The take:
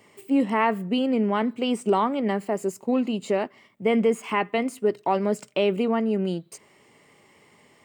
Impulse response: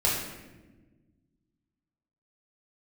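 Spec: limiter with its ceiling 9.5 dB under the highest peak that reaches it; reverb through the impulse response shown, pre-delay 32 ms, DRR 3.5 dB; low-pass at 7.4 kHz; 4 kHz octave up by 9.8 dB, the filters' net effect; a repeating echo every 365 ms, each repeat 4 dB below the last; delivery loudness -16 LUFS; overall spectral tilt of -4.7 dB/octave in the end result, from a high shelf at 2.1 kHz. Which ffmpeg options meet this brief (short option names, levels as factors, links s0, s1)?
-filter_complex "[0:a]lowpass=7400,highshelf=f=2100:g=9,equalizer=f=4000:t=o:g=6,alimiter=limit=0.168:level=0:latency=1,aecho=1:1:365|730|1095|1460|1825|2190|2555|2920|3285:0.631|0.398|0.25|0.158|0.0994|0.0626|0.0394|0.0249|0.0157,asplit=2[s0][s1];[1:a]atrim=start_sample=2205,adelay=32[s2];[s1][s2]afir=irnorm=-1:irlink=0,volume=0.178[s3];[s0][s3]amix=inputs=2:normalize=0,volume=2.11"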